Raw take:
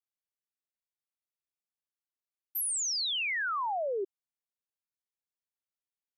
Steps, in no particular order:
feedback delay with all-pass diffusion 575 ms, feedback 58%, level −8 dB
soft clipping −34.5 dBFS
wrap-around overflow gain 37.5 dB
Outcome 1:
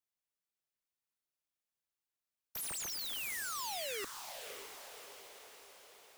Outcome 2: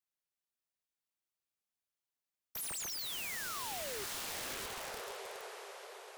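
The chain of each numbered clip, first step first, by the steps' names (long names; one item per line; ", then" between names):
soft clipping, then wrap-around overflow, then feedback delay with all-pass diffusion
feedback delay with all-pass diffusion, then soft clipping, then wrap-around overflow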